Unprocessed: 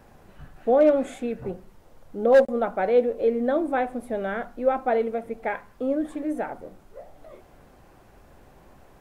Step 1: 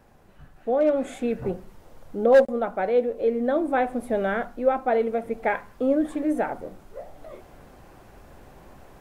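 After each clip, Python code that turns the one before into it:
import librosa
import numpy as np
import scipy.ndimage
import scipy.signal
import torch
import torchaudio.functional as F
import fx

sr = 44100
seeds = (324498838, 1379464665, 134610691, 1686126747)

y = fx.rider(x, sr, range_db=4, speed_s=0.5)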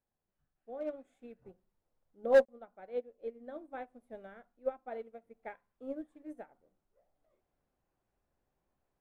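y = fx.upward_expand(x, sr, threshold_db=-30.0, expansion=2.5)
y = y * librosa.db_to_amplitude(-6.5)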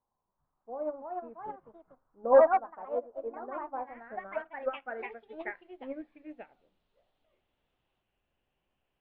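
y = fx.filter_sweep_lowpass(x, sr, from_hz=1000.0, to_hz=2900.0, start_s=3.78, end_s=6.59, q=6.4)
y = fx.echo_pitch(y, sr, ms=437, semitones=3, count=2, db_per_echo=-3.0)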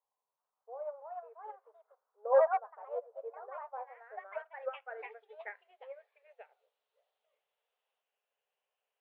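y = fx.brickwall_highpass(x, sr, low_hz=400.0)
y = y * librosa.db_to_amplitude(-5.5)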